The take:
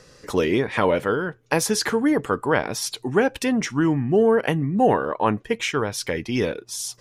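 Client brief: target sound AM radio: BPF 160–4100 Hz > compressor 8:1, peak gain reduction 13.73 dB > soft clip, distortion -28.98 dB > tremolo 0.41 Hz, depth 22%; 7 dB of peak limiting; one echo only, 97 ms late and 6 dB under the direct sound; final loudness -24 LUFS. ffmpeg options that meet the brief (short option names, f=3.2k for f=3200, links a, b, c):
-af "alimiter=limit=-12.5dB:level=0:latency=1,highpass=160,lowpass=4.1k,aecho=1:1:97:0.501,acompressor=threshold=-28dB:ratio=8,asoftclip=threshold=-16.5dB,tremolo=f=0.41:d=0.22,volume=10dB"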